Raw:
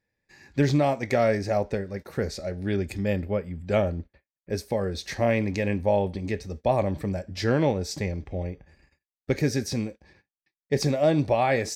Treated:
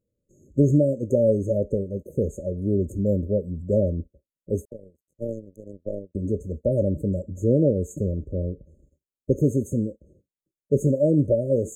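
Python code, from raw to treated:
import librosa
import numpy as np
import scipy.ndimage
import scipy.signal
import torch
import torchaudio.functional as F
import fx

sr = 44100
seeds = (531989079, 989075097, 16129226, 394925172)

y = fx.high_shelf(x, sr, hz=4400.0, db=-8.0)
y = fx.power_curve(y, sr, exponent=3.0, at=(4.65, 6.15))
y = fx.brickwall_bandstop(y, sr, low_hz=620.0, high_hz=6300.0)
y = F.gain(torch.from_numpy(y), 4.0).numpy()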